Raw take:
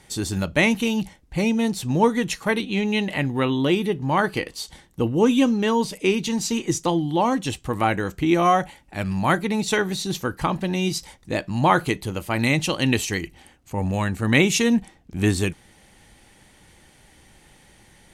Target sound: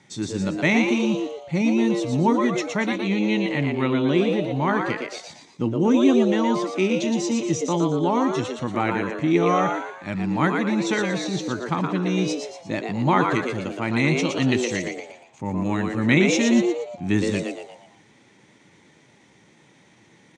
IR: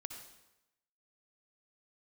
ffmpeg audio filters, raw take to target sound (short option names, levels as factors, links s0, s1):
-filter_complex "[0:a]atempo=0.89,highpass=f=120:w=0.5412,highpass=f=120:w=1.3066,equalizer=f=460:t=q:w=4:g=-9,equalizer=f=720:t=q:w=4:g=-7,equalizer=f=1100:t=q:w=4:g=-4,equalizer=f=1600:t=q:w=4:g=-5,equalizer=f=2900:t=q:w=4:g=-8,equalizer=f=4600:t=q:w=4:g=-9,lowpass=f=6200:w=0.5412,lowpass=f=6200:w=1.3066,asplit=6[s0][s1][s2][s3][s4][s5];[s1]adelay=117,afreqshift=120,volume=0.596[s6];[s2]adelay=234,afreqshift=240,volume=0.251[s7];[s3]adelay=351,afreqshift=360,volume=0.105[s8];[s4]adelay=468,afreqshift=480,volume=0.0442[s9];[s5]adelay=585,afreqshift=600,volume=0.0186[s10];[s0][s6][s7][s8][s9][s10]amix=inputs=6:normalize=0,volume=1.12"